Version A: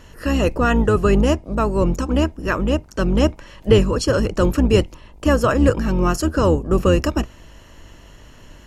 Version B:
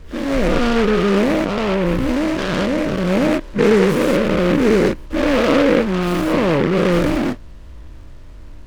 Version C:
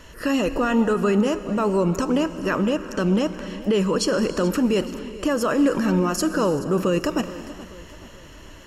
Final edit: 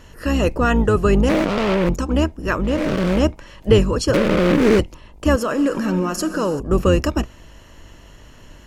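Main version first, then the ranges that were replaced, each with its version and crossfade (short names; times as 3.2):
A
1.29–1.89 from B
2.75–3.16 from B, crossfade 0.24 s
4.14–4.79 from B
5.36–6.6 from C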